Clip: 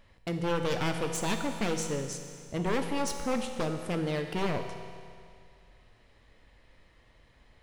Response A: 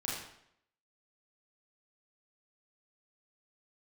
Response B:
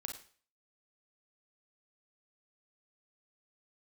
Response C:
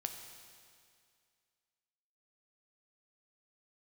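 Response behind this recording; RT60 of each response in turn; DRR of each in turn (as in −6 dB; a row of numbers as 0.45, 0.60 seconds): C; 0.70, 0.45, 2.2 seconds; −6.0, 3.0, 5.0 decibels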